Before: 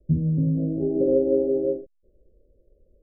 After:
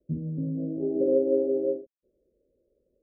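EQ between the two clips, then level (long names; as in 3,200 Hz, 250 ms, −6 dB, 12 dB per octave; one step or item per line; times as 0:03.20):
dynamic equaliser 550 Hz, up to +4 dB, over −31 dBFS, Q 1.5
resonant band-pass 470 Hz, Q 0.53
parametric band 260 Hz +3 dB
−6.0 dB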